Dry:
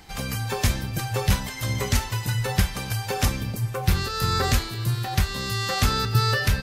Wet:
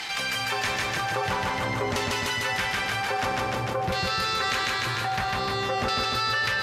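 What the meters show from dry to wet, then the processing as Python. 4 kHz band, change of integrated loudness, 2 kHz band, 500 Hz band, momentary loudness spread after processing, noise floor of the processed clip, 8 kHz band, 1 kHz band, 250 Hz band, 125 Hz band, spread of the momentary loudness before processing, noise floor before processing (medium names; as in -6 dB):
+1.0 dB, -1.0 dB, +4.5 dB, +1.0 dB, 3 LU, -29 dBFS, -5.0 dB, +3.5 dB, -5.0 dB, -11.5 dB, 6 LU, -34 dBFS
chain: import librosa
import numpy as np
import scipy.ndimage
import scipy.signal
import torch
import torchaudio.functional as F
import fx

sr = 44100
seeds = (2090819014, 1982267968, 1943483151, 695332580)

y = fx.filter_lfo_bandpass(x, sr, shape='saw_down', hz=0.51, low_hz=620.0, high_hz=2800.0, q=0.81)
y = fx.echo_feedback(y, sr, ms=150, feedback_pct=60, wet_db=-3)
y = fx.env_flatten(y, sr, amount_pct=70)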